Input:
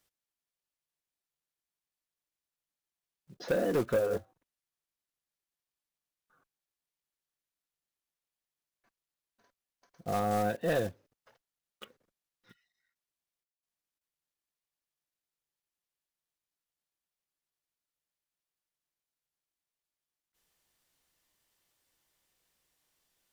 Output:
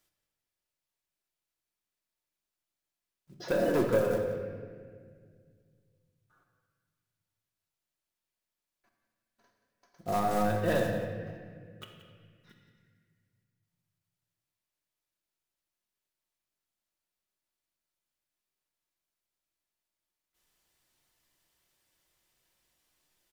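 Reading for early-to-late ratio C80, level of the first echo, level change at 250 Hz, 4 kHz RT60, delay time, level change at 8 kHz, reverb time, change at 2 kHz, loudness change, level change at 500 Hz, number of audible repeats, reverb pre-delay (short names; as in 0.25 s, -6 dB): 5.0 dB, -13.0 dB, +3.5 dB, 1.3 s, 0.177 s, +1.5 dB, 1.9 s, +2.5 dB, +1.5 dB, +2.0 dB, 1, 3 ms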